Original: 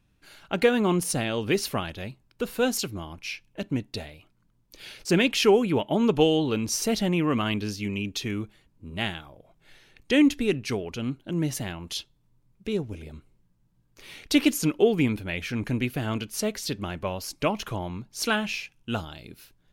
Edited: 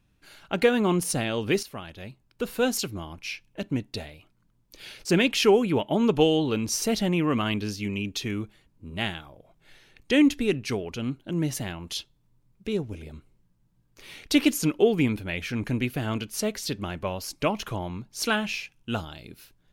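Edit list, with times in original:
1.63–2.47 fade in, from -13.5 dB

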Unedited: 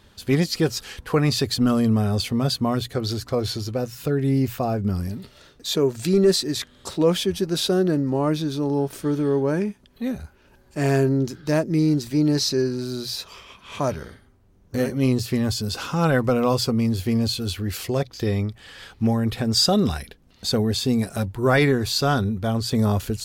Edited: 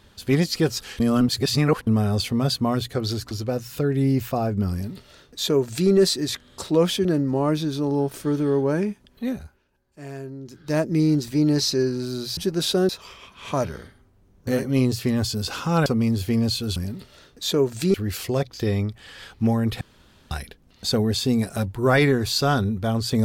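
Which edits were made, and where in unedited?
1–1.87 reverse
3.31–3.58 cut
4.99–6.17 copy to 17.54
7.32–7.84 move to 13.16
10.07–11.63 dip -16 dB, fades 0.40 s
16.13–16.64 cut
19.41–19.91 room tone

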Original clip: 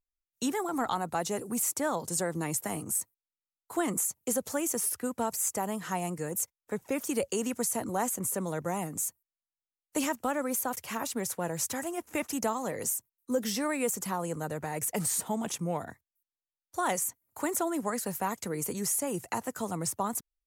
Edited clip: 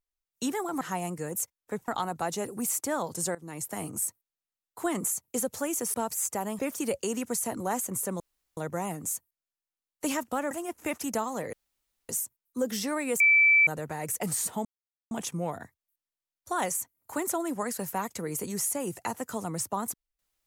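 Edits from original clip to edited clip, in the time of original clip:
2.28–2.77 fade in, from -18 dB
4.87–5.16 cut
5.81–6.88 move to 0.81
8.49 insert room tone 0.37 s
10.43–11.8 cut
12.82 insert room tone 0.56 s
13.93–14.4 bleep 2320 Hz -16.5 dBFS
15.38 insert silence 0.46 s

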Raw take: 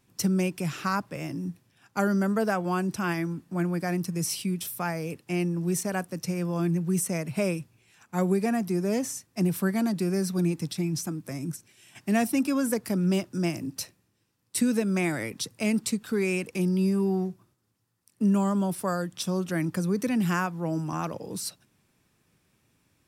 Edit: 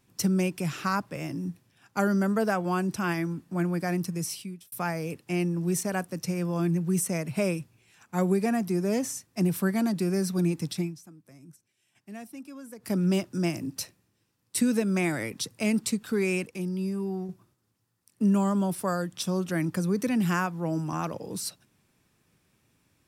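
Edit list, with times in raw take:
4.04–4.72 fade out
10.81–12.92 dip -17.5 dB, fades 0.14 s
16.46–17.29 gain -6 dB

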